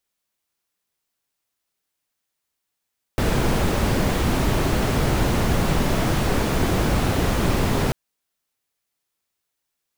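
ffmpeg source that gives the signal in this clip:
-f lavfi -i "anoisesrc=c=brown:a=0.495:d=4.74:r=44100:seed=1"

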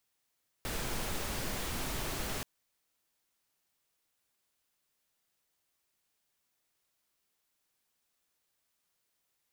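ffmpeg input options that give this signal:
-f lavfi -i "anoisesrc=c=pink:a=0.0813:d=1.78:r=44100:seed=1"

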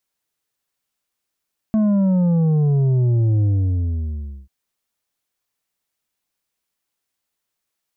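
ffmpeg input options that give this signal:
-f lavfi -i "aevalsrc='0.188*clip((2.74-t)/1.05,0,1)*tanh(2.11*sin(2*PI*220*2.74/log(65/220)*(exp(log(65/220)*t/2.74)-1)))/tanh(2.11)':d=2.74:s=44100"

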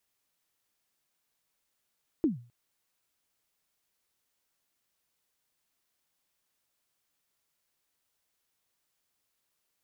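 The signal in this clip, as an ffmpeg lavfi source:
-f lavfi -i "aevalsrc='0.112*pow(10,-3*t/0.38)*sin(2*PI*(350*0.138/log(120/350)*(exp(log(120/350)*min(t,0.138)/0.138)-1)+120*max(t-0.138,0)))':d=0.26:s=44100"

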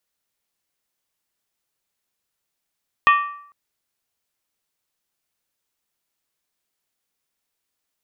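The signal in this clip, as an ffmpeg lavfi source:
-f lavfi -i "aevalsrc='0.355*pow(10,-3*t/0.64)*sin(2*PI*1160*t)+0.2*pow(10,-3*t/0.507)*sin(2*PI*1849*t)+0.112*pow(10,-3*t/0.438)*sin(2*PI*2477.8*t)+0.0631*pow(10,-3*t/0.422)*sin(2*PI*2663.4*t)+0.0355*pow(10,-3*t/0.393)*sin(2*PI*3077.5*t)+0.02*pow(10,-3*t/0.375)*sin(2*PI*3384.9*t)':d=0.45:s=44100"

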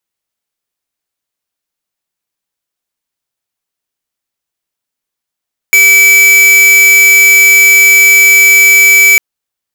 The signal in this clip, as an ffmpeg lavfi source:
-f lavfi -i "aevalsrc='0.596*(2*lt(mod(2300*t,1),0.5)-1)':d=3.45:s=44100"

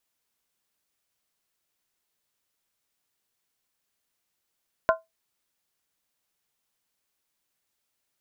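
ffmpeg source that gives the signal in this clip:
-f lavfi -i "aevalsrc='0.188*pow(10,-3*t/0.18)*sin(2*PI*653*t)+0.133*pow(10,-3*t/0.143)*sin(2*PI*1040.9*t)+0.0944*pow(10,-3*t/0.123)*sin(2*PI*1394.8*t)+0.0668*pow(10,-3*t/0.119)*sin(2*PI*1499.3*t)':d=0.63:s=44100"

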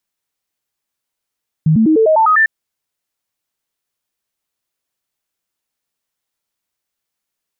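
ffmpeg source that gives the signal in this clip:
-f lavfi -i "aevalsrc='0.422*clip(min(mod(t,0.1),0.1-mod(t,0.1))/0.005,0,1)*sin(2*PI*157*pow(2,floor(t/0.1)/2)*mod(t,0.1))':d=0.8:s=44100"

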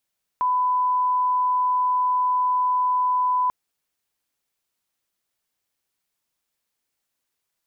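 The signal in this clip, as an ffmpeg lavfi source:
-f lavfi -i "sine=f=1000:d=3.09:r=44100,volume=0.06dB"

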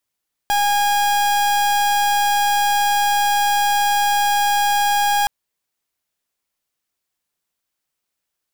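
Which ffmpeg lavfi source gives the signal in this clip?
-f lavfi -i "aevalsrc='0.141*(2*lt(mod(819*t,1),0.38)-1)':d=4.77:s=44100"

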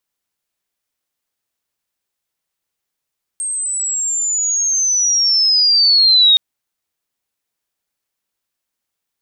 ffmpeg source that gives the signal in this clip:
-f lavfi -i "aevalsrc='pow(10,(-19+12.5*t/2.97)/20)*sin(2*PI*(8500*t-4800*t*t/(2*2.97)))':d=2.97:s=44100"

